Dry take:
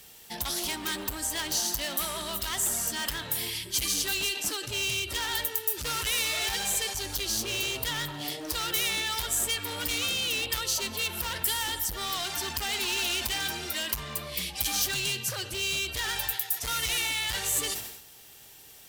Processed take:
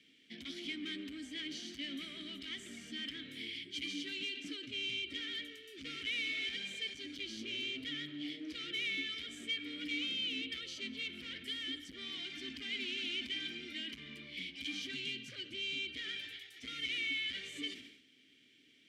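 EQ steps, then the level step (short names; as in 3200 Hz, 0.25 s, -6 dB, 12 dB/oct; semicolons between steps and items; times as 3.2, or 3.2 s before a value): vowel filter i; air absorption 51 m; notches 50/100 Hz; +4.5 dB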